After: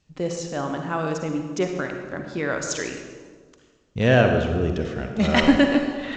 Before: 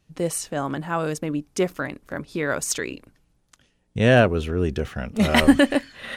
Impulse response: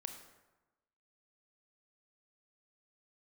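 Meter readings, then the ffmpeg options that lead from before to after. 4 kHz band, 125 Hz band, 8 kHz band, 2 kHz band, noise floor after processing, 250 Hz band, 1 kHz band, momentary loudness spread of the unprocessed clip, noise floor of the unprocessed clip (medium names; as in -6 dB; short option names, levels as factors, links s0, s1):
-1.0 dB, 0.0 dB, -4.5 dB, -0.5 dB, -59 dBFS, 0.0 dB, -0.5 dB, 15 LU, -67 dBFS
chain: -filter_complex "[1:a]atrim=start_sample=2205,asetrate=28224,aresample=44100[s0];[0:a][s0]afir=irnorm=-1:irlink=0" -ar 16000 -c:a g722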